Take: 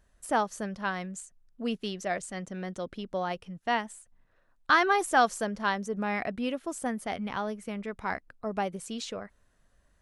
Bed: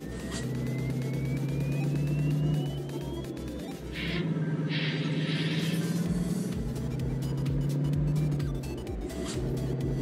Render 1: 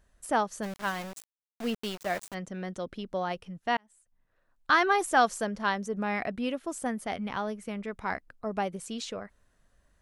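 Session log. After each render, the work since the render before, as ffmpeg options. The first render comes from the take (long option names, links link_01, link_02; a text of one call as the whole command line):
ffmpeg -i in.wav -filter_complex "[0:a]asplit=3[link_01][link_02][link_03];[link_01]afade=type=out:start_time=0.62:duration=0.02[link_04];[link_02]aeval=exprs='val(0)*gte(abs(val(0)),0.0158)':channel_layout=same,afade=type=in:start_time=0.62:duration=0.02,afade=type=out:start_time=2.33:duration=0.02[link_05];[link_03]afade=type=in:start_time=2.33:duration=0.02[link_06];[link_04][link_05][link_06]amix=inputs=3:normalize=0,asplit=2[link_07][link_08];[link_07]atrim=end=3.77,asetpts=PTS-STARTPTS,afade=type=out:start_time=3.766:duration=0.004:curve=hsin[link_09];[link_08]atrim=start=3.77,asetpts=PTS-STARTPTS,afade=type=in:duration=1.05[link_10];[link_09][link_10]concat=n=2:v=0:a=1" out.wav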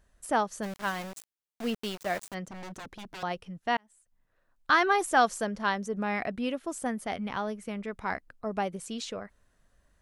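ffmpeg -i in.wav -filter_complex "[0:a]asettb=1/sr,asplit=3[link_01][link_02][link_03];[link_01]atrim=end=2.474[link_04];[link_02]atrim=start=2.47:end=3.23,asetpts=PTS-STARTPTS,afade=type=in:duration=0.004:curve=qsin,afade=type=out:start_time=0.756:duration=0.004:curve=qsin,aeval=exprs='0.0141*(abs(mod(val(0)/0.0141+3,4)-2)-1)':channel_layout=same[link_05];[link_03]atrim=start=3.226[link_06];[link_04][link_05]acrossfade=duration=0.004:curve1=hsin:curve2=qsin[link_07];[link_07][link_06]acrossfade=duration=0.004:curve1=qsin:curve2=hsin" out.wav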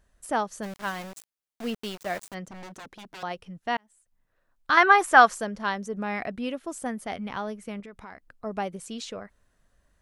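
ffmpeg -i in.wav -filter_complex "[0:a]asettb=1/sr,asplit=3[link_01][link_02][link_03];[link_01]atrim=end=2.664[link_04];[link_02]atrim=start=2.66:end=3.39,asetpts=PTS-STARTPTS,afade=type=in:duration=0.004:curve=qsin,afade=type=out:start_time=0.726:duration=0.004:curve=qsin,lowshelf=frequency=120:gain=-9.5[link_05];[link_03]atrim=start=3.386[link_06];[link_04][link_05]acrossfade=duration=0.004:curve1=hsin:curve2=qsin[link_07];[link_07][link_06]acrossfade=duration=0.004:curve1=qsin:curve2=hsin,asettb=1/sr,asplit=3[link_08][link_09][link_10];[link_08]atrim=end=4.774[link_11];[link_09]atrim=start=4.77:end=5.35,asetpts=PTS-STARTPTS,afade=type=in:duration=0.004:curve=qsin,afade=type=out:start_time=0.576:duration=0.004:curve=qsin,equalizer=frequency=1400:width_type=o:width=2.1:gain=10.5[link_12];[link_10]atrim=start=5.346[link_13];[link_11][link_12]acrossfade=duration=0.004:curve1=hsin:curve2=qsin[link_14];[link_14][link_13]acrossfade=duration=0.004:curve1=qsin:curve2=hsin,asettb=1/sr,asplit=3[link_15][link_16][link_17];[link_15]atrim=end=7.804[link_18];[link_16]atrim=start=7.8:end=8.32,asetpts=PTS-STARTPTS,afade=type=in:duration=0.004:curve=qsin,afade=type=out:start_time=0.516:duration=0.004:curve=qsin,acompressor=threshold=-41dB:ratio=4:attack=3.2:release=140:knee=1:detection=peak[link_19];[link_17]atrim=start=8.316[link_20];[link_18][link_19]acrossfade=duration=0.004:curve1=hsin:curve2=qsin[link_21];[link_21][link_20]acrossfade=duration=0.004:curve1=qsin:curve2=hsin" out.wav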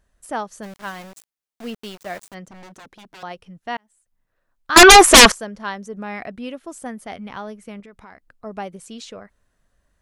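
ffmpeg -i in.wav -filter_complex "[0:a]asettb=1/sr,asplit=3[link_01][link_02][link_03];[link_01]atrim=end=4.764[link_04];[link_02]atrim=start=4.76:end=5.32,asetpts=PTS-STARTPTS,afade=type=in:duration=0.004:curve=qsin,afade=type=out:start_time=0.556:duration=0.004:curve=qsin,aeval=exprs='0.794*sin(PI/2*7.08*val(0)/0.794)':channel_layout=same[link_05];[link_03]atrim=start=5.316[link_06];[link_04][link_05]acrossfade=duration=0.004:curve1=hsin:curve2=qsin[link_07];[link_07][link_06]acrossfade=duration=0.004:curve1=qsin:curve2=hsin" out.wav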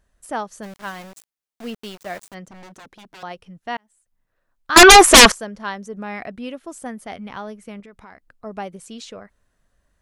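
ffmpeg -i in.wav -af anull out.wav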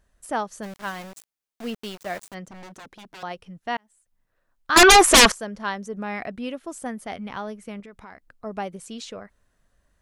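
ffmpeg -i in.wav -af "alimiter=limit=-7.5dB:level=0:latency=1:release=278" out.wav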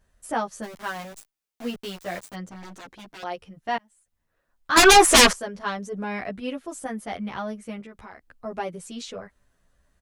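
ffmpeg -i in.wav -filter_complex "[0:a]asplit=2[link_01][link_02];[link_02]asoftclip=type=tanh:threshold=-18dB,volume=-6dB[link_03];[link_01][link_03]amix=inputs=2:normalize=0,asplit=2[link_04][link_05];[link_05]adelay=10.9,afreqshift=0.27[link_06];[link_04][link_06]amix=inputs=2:normalize=1" out.wav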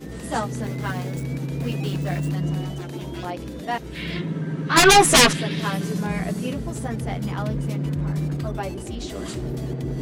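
ffmpeg -i in.wav -i bed.wav -filter_complex "[1:a]volume=2.5dB[link_01];[0:a][link_01]amix=inputs=2:normalize=0" out.wav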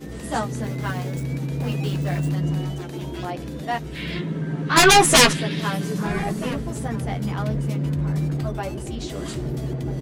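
ffmpeg -i in.wav -filter_complex "[0:a]asplit=2[link_01][link_02];[link_02]adelay=14,volume=-12dB[link_03];[link_01][link_03]amix=inputs=2:normalize=0,asplit=2[link_04][link_05];[link_05]adelay=1283,volume=-15dB,highshelf=frequency=4000:gain=-28.9[link_06];[link_04][link_06]amix=inputs=2:normalize=0" out.wav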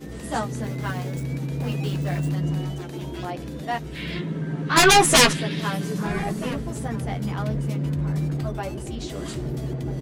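ffmpeg -i in.wav -af "volume=-1.5dB" out.wav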